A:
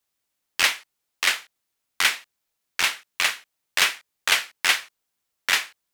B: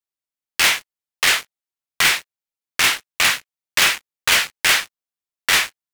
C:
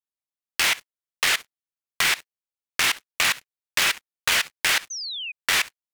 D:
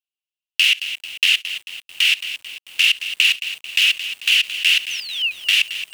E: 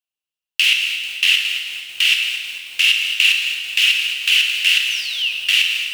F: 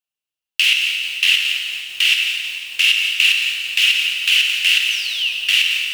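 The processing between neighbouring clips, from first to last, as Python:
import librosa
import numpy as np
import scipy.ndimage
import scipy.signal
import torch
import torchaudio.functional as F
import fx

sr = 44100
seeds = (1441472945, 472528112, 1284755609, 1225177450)

y1 = fx.leveller(x, sr, passes=5)
y1 = y1 * librosa.db_to_amplitude(-5.0)
y2 = fx.level_steps(y1, sr, step_db=20)
y2 = fx.spec_paint(y2, sr, seeds[0], shape='fall', start_s=4.9, length_s=0.42, low_hz=2400.0, high_hz=6400.0, level_db=-32.0)
y3 = fx.highpass_res(y2, sr, hz=2800.0, q=8.9)
y3 = fx.echo_crushed(y3, sr, ms=221, feedback_pct=55, bits=5, wet_db=-11)
y3 = y3 * librosa.db_to_amplitude(-4.5)
y4 = fx.rev_plate(y3, sr, seeds[1], rt60_s=1.9, hf_ratio=0.95, predelay_ms=0, drr_db=2.0)
y5 = fx.echo_feedback(y4, sr, ms=174, feedback_pct=55, wet_db=-11.0)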